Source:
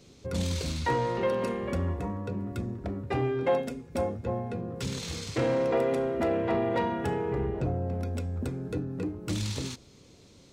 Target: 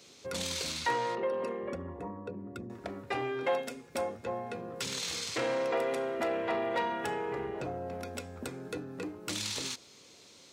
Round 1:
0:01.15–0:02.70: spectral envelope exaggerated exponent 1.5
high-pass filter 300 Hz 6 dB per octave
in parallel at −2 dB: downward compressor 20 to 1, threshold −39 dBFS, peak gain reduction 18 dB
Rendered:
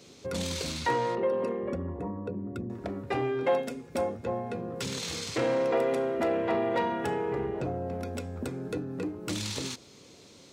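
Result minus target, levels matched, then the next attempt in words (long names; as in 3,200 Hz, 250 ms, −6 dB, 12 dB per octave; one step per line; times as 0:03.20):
250 Hz band +3.0 dB
0:01.15–0:02.70: spectral envelope exaggerated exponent 1.5
high-pass filter 1,000 Hz 6 dB per octave
in parallel at −2 dB: downward compressor 20 to 1, threshold −39 dBFS, peak gain reduction 13.5 dB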